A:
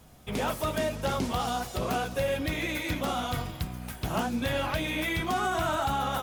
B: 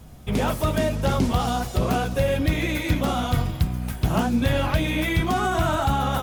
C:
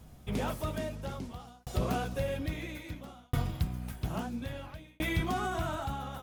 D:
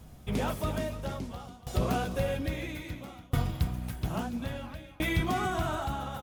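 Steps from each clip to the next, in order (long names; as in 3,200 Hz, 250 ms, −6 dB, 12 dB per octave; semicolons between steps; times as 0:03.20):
low-shelf EQ 260 Hz +9.5 dB; level +3.5 dB
shaped tremolo saw down 0.6 Hz, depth 100%; level −7.5 dB
single-tap delay 287 ms −12.5 dB; level +2.5 dB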